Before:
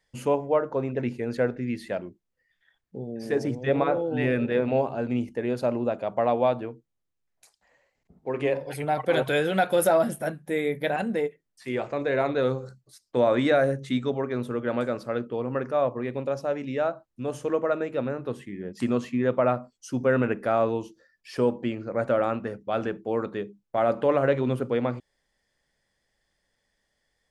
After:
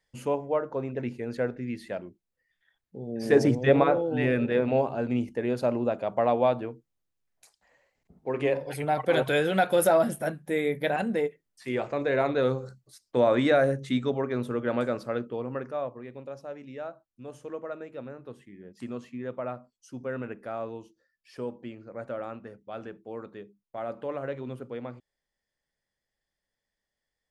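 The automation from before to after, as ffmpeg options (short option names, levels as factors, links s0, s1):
-af "volume=2.11,afade=t=in:st=3:d=0.4:silence=0.298538,afade=t=out:st=3.4:d=0.63:silence=0.446684,afade=t=out:st=14.97:d=1.03:silence=0.281838"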